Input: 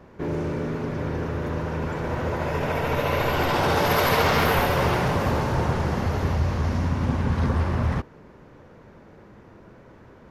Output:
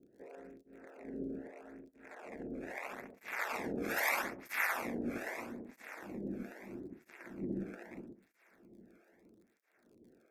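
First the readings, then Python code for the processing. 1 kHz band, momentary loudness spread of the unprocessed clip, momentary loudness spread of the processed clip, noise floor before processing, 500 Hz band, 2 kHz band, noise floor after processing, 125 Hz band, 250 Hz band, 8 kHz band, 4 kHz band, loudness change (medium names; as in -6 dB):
-19.0 dB, 9 LU, 20 LU, -49 dBFS, -19.0 dB, -10.5 dB, -73 dBFS, -30.0 dB, -14.5 dB, -11.0 dB, -20.0 dB, -15.5 dB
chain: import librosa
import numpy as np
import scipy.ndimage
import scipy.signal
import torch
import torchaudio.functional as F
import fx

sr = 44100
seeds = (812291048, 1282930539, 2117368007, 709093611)

y = fx.wiener(x, sr, points=41)
y = fx.graphic_eq(y, sr, hz=(125, 250, 500, 1000, 2000, 4000, 8000), db=(6, 7, -5, -6, 10, -9, 8))
y = y + 10.0 ** (-4.0 / 20.0) * np.pad(y, (int(119 * sr / 1000.0), 0))[:len(y)]
y = y * np.sin(2.0 * np.pi * 110.0 * np.arange(len(y)) / sr)
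y = fx.low_shelf(y, sr, hz=380.0, db=-11.5)
y = fx.echo_heads(y, sr, ms=304, heads='first and second', feedback_pct=69, wet_db=-22.5)
y = fx.harmonic_tremolo(y, sr, hz=1.6, depth_pct=100, crossover_hz=520.0)
y = fx.dmg_crackle(y, sr, seeds[0], per_s=46.0, level_db=-54.0)
y = fx.notch(y, sr, hz=3000.0, q=5.6)
y = fx.flanger_cancel(y, sr, hz=0.78, depth_ms=1.1)
y = F.gain(torch.from_numpy(y), -2.0).numpy()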